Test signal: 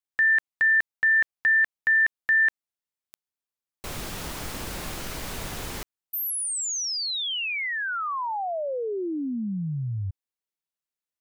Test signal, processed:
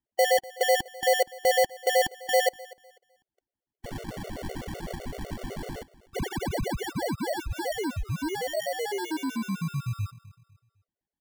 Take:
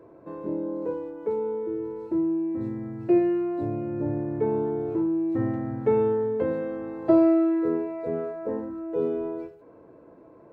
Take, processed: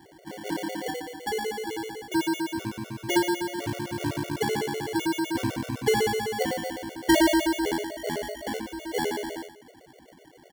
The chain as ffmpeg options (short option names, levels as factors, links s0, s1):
-filter_complex "[0:a]asplit=2[s0][s1];[s1]adelay=245,lowpass=f=2200:p=1,volume=0.112,asplit=2[s2][s3];[s3]adelay=245,lowpass=f=2200:p=1,volume=0.34,asplit=2[s4][s5];[s5]adelay=245,lowpass=f=2200:p=1,volume=0.34[s6];[s0][s2][s4][s6]amix=inputs=4:normalize=0,acrusher=samples=35:mix=1:aa=0.000001,afftfilt=real='re*gt(sin(2*PI*7.9*pts/sr)*(1-2*mod(floor(b*sr/1024/380),2)),0)':imag='im*gt(sin(2*PI*7.9*pts/sr)*(1-2*mod(floor(b*sr/1024/380),2)),0)':win_size=1024:overlap=0.75,volume=1.19"